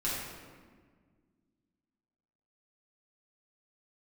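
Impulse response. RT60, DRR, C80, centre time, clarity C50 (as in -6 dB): 1.6 s, -8.5 dB, 1.5 dB, 93 ms, -1.0 dB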